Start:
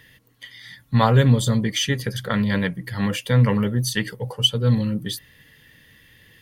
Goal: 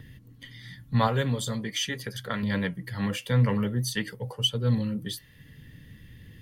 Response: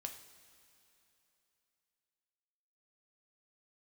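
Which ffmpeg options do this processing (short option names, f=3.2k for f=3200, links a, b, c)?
-filter_complex "[0:a]asettb=1/sr,asplit=3[a][b][c];[a]atrim=end=1.074[d];[b]atrim=start=1.07:end=2.43,asetpts=PTS-STARTPTS,afade=t=in:d=0.004:c=qsin,afade=t=out:st=1.356:d=0.004:c=qsin,lowshelf=f=290:g=-8.5[e];[c]atrim=start=2.426[f];[d][e]acrossfade=d=0.004:c1=hsin:c2=qsin[g];[g][f]acrossfade=d=0.004:c1=qsin:c2=hsin,acrossover=split=280|1800[h][i][j];[h]acompressor=mode=upward:threshold=-27dB:ratio=2.5[k];[k][i][j]amix=inputs=3:normalize=0,flanger=delay=2.8:depth=4.4:regen=-82:speed=0.45:shape=sinusoidal,volume=-1.5dB"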